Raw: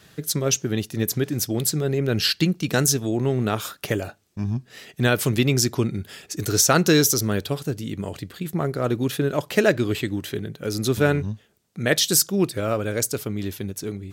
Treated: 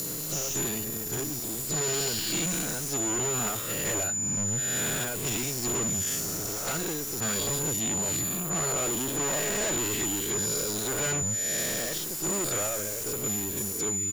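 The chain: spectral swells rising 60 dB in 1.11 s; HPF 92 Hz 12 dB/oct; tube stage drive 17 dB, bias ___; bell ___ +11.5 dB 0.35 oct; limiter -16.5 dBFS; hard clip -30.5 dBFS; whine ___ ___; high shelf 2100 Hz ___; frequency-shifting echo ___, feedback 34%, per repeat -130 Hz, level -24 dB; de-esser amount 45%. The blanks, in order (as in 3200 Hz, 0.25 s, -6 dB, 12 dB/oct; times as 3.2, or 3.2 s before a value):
0.55, 12000 Hz, 7000 Hz, -34 dBFS, +7.5 dB, 0.241 s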